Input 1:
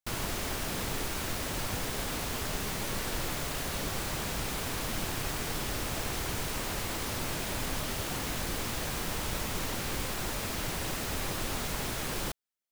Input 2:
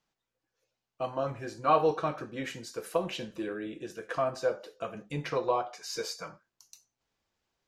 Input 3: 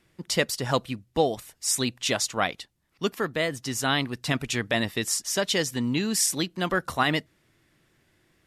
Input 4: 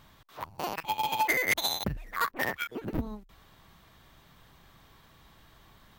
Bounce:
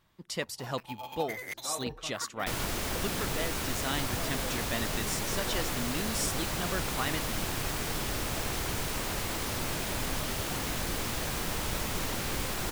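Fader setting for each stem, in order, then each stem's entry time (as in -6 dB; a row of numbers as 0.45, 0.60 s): +1.0, -15.5, -10.0, -13.0 dB; 2.40, 0.00, 0.00, 0.00 s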